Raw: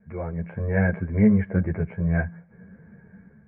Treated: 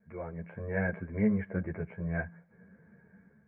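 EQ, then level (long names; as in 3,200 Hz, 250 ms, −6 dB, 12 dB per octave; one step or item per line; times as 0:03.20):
low-shelf EQ 180 Hz −9 dB
notch filter 790 Hz, Q 22
−6.0 dB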